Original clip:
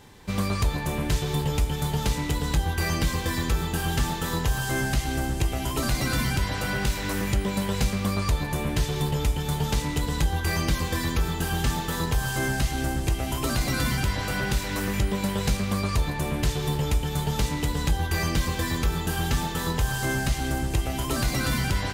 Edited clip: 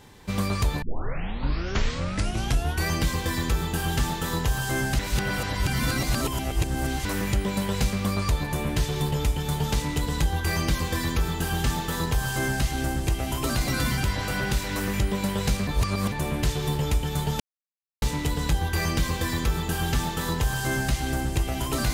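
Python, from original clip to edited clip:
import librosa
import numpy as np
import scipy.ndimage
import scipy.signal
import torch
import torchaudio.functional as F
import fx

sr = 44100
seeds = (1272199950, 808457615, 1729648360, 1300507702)

y = fx.edit(x, sr, fx.tape_start(start_s=0.82, length_s=2.05),
    fx.reverse_span(start_s=4.99, length_s=2.06),
    fx.reverse_span(start_s=15.67, length_s=0.45),
    fx.insert_silence(at_s=17.4, length_s=0.62), tone=tone)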